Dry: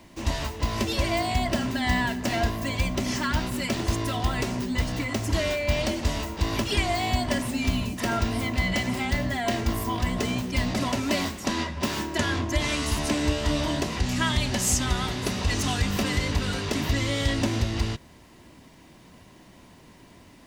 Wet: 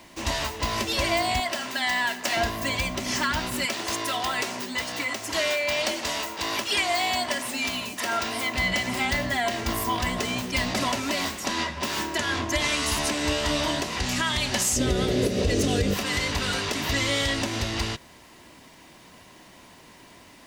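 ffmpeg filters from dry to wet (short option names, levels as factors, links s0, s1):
-filter_complex "[0:a]asettb=1/sr,asplit=3[s0][s1][s2];[s0]atrim=end=1.404[s3];[s1]atrim=start=1.4:end=2.37,asetpts=PTS-STARTPTS,afade=t=in:d=0.004:c=qsin,afade=t=out:st=0.966:d=0.004:c=qsin,highpass=f=640:p=1[s4];[s2]atrim=start=2.366[s5];[s3][s4]acrossfade=d=0.004:c1=hsin:c2=qsin[s6];[s6][s5]acrossfade=d=0.004:c1=qsin:c2=hsin,asettb=1/sr,asplit=3[s7][s8][s9];[s7]atrim=end=3.654[s10];[s8]atrim=start=3.65:end=8.55,asetpts=PTS-STARTPTS,afade=t=in:d=0.004:c=qsin,afade=t=out:st=4.896:d=0.004:c=qsin,highpass=f=410:p=1[s11];[s9]atrim=start=8.546[s12];[s10][s11]acrossfade=d=0.004:c1=hsin:c2=qsin[s13];[s13][s12]acrossfade=d=0.004:c1=qsin:c2=hsin,asettb=1/sr,asplit=3[s14][s15][s16];[s14]atrim=end=14.764[s17];[s15]atrim=start=14.76:end=15.94,asetpts=PTS-STARTPTS,afade=t=in:d=0.004:c=qsin,afade=t=out:st=1.176:d=0.004:c=qsin,lowshelf=f=680:t=q:w=3:g=10.5[s18];[s16]atrim=start=15.936[s19];[s17][s18]acrossfade=d=0.004:c1=hsin:c2=qsin[s20];[s20][s19]acrossfade=d=0.004:c1=qsin:c2=hsin,lowshelf=f=360:g=-11,alimiter=limit=0.112:level=0:latency=1:release=225,volume=1.88"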